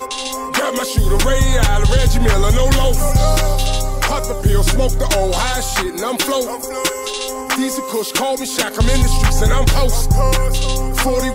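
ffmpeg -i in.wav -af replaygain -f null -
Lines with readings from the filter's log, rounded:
track_gain = +0.4 dB
track_peak = 0.486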